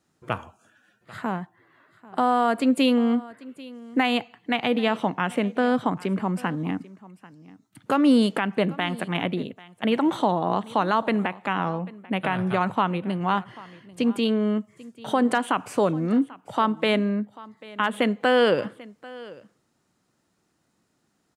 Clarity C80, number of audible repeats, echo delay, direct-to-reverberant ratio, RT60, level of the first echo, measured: no reverb, 1, 791 ms, no reverb, no reverb, -20.5 dB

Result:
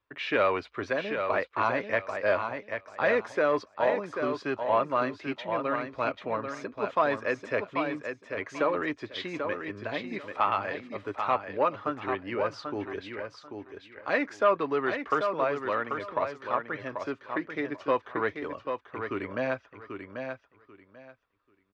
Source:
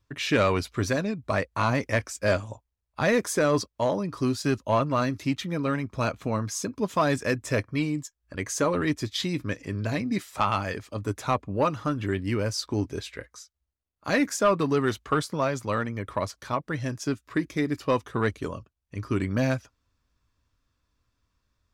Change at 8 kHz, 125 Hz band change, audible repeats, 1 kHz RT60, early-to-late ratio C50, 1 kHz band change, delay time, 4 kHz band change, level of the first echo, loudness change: under -20 dB, -15.5 dB, 3, no reverb, no reverb, +0.5 dB, 789 ms, -7.0 dB, -6.5 dB, -3.0 dB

